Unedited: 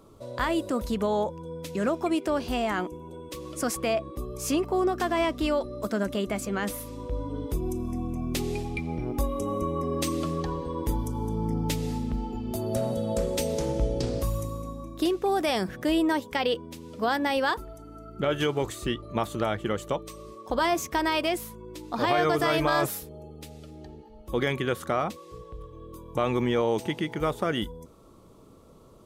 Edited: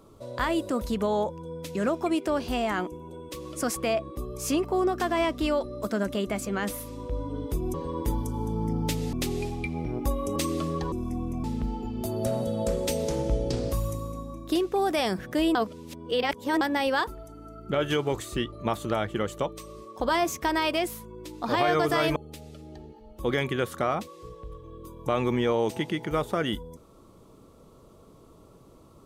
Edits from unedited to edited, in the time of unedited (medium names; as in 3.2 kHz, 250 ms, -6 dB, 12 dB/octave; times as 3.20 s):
7.74–8.26 s: swap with 10.55–11.94 s
9.49–9.99 s: delete
16.05–17.11 s: reverse
22.66–23.25 s: delete